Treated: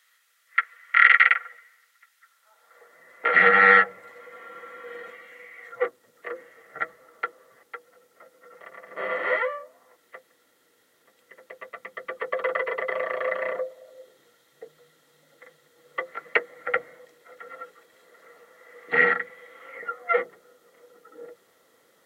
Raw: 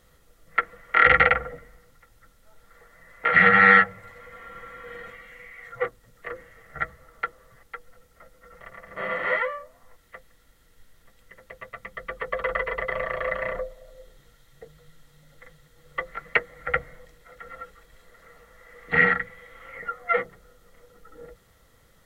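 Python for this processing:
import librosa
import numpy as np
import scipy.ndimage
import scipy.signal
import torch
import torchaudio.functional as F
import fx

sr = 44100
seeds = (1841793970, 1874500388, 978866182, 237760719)

y = fx.filter_sweep_highpass(x, sr, from_hz=1800.0, to_hz=340.0, start_s=2.21, end_s=2.98, q=1.5)
y = F.gain(torch.from_numpy(y), -1.0).numpy()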